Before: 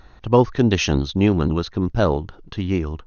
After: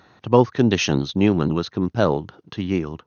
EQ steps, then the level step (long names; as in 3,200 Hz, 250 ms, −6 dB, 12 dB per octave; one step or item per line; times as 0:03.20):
high-pass filter 110 Hz 24 dB per octave
0.0 dB